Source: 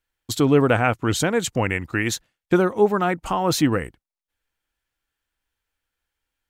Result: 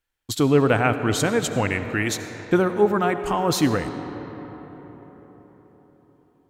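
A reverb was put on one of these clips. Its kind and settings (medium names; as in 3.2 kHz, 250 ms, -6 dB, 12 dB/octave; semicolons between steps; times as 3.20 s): algorithmic reverb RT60 4.8 s, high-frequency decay 0.45×, pre-delay 40 ms, DRR 9 dB; trim -1 dB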